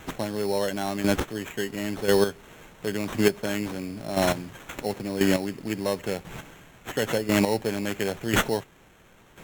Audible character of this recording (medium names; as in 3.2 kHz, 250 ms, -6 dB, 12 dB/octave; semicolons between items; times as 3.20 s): aliases and images of a low sample rate 4.8 kHz, jitter 0%; chopped level 0.96 Hz, depth 65%, duty 15%; Vorbis